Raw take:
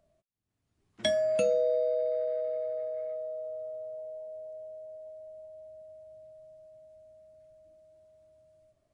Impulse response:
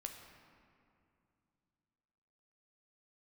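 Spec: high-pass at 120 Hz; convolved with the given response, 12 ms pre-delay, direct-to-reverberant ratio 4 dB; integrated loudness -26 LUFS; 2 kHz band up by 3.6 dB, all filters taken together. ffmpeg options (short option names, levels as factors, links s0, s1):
-filter_complex "[0:a]highpass=120,equalizer=f=2000:t=o:g=4.5,asplit=2[s0][s1];[1:a]atrim=start_sample=2205,adelay=12[s2];[s1][s2]afir=irnorm=-1:irlink=0,volume=0.891[s3];[s0][s3]amix=inputs=2:normalize=0,volume=1.58"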